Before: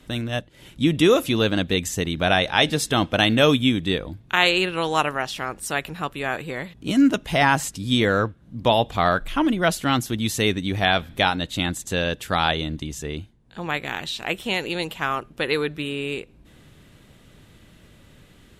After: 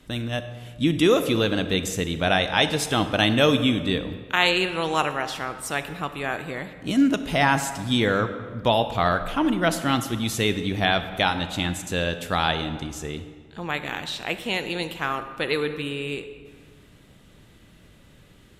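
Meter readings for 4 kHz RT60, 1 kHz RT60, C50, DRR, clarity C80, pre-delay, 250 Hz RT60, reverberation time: 1.1 s, 1.7 s, 11.0 dB, 10.0 dB, 12.0 dB, 28 ms, 1.9 s, 1.7 s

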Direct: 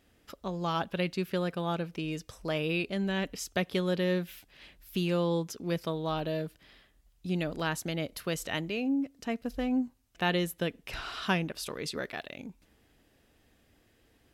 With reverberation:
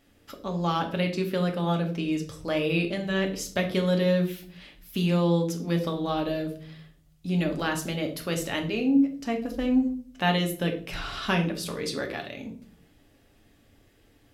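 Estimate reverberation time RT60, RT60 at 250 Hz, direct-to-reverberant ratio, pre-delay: 0.50 s, 0.75 s, 2.5 dB, 3 ms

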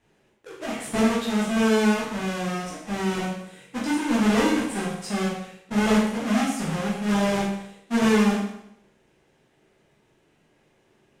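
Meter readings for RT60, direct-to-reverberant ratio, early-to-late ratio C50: 0.75 s, -7.0 dB, 2.0 dB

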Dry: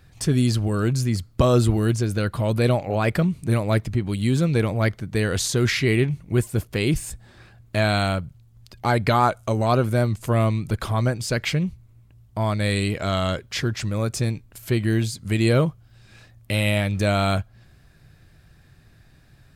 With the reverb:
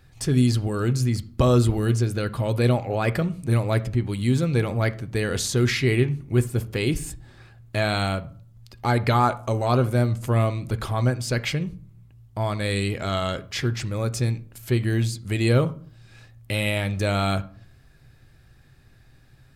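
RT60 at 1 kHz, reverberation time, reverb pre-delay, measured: 0.50 s, 0.50 s, 3 ms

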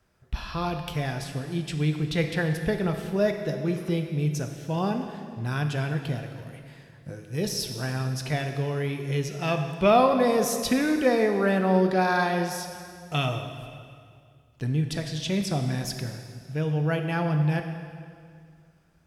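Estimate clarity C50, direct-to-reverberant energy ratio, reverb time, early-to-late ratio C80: 7.0 dB, 5.0 dB, 2.1 s, 8.0 dB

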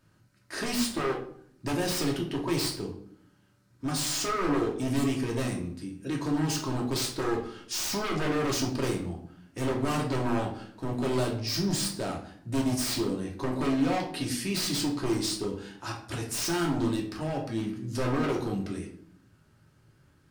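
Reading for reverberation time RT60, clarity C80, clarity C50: 0.60 s, 12.0 dB, 8.0 dB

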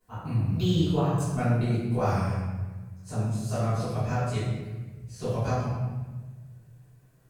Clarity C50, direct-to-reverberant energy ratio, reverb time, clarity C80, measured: -1.0 dB, -15.5 dB, 1.3 s, 2.0 dB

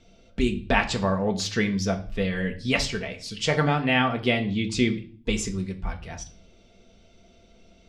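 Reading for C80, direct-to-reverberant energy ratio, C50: 19.5 dB, 3.5 dB, 14.5 dB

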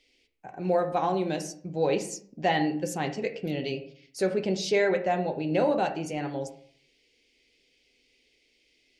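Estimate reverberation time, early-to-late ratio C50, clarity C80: 0.55 s, 11.0 dB, 15.0 dB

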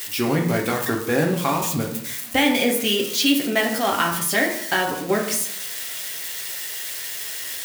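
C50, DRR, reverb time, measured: 7.0 dB, -0.5 dB, 0.70 s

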